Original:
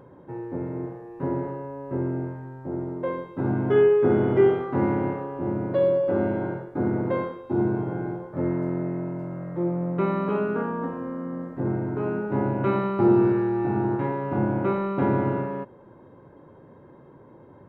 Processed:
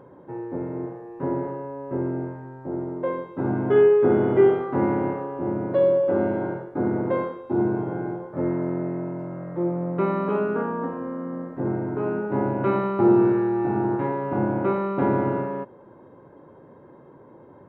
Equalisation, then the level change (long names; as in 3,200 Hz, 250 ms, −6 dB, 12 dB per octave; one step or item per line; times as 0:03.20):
low-shelf EQ 170 Hz −9 dB
high-shelf EQ 2,200 Hz −8 dB
+3.5 dB